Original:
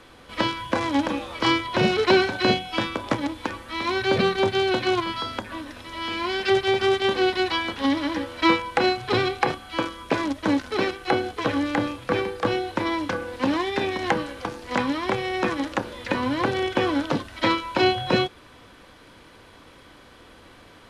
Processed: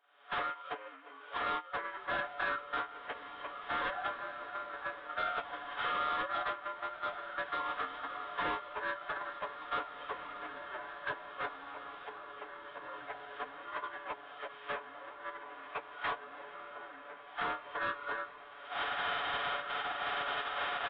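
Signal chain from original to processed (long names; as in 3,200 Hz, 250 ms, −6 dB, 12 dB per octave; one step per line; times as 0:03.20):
partials spread apart or drawn together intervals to 77%
camcorder AGC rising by 59 dB per second
high-pass filter 1,400 Hz 12 dB per octave
noise gate −28 dBFS, range −18 dB
high-shelf EQ 3,600 Hz +6.5 dB
comb filter 7 ms, depth 68%
soft clipping −29 dBFS, distortion −8 dB
downsampling to 11,025 Hz
on a send: feedback delay with all-pass diffusion 1,975 ms, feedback 52%, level −9 dB
on the sum: formants moved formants −5 semitones
level −2 dB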